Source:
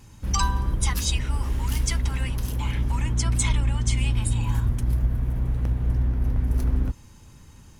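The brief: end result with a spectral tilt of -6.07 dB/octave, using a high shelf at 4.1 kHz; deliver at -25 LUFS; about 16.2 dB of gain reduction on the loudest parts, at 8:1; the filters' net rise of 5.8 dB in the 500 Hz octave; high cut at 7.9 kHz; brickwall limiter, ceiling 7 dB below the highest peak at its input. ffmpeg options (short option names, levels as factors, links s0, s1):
-af "lowpass=7900,equalizer=f=500:t=o:g=7.5,highshelf=f=4100:g=-7.5,acompressor=threshold=0.0178:ratio=8,volume=8.41,alimiter=limit=0.178:level=0:latency=1"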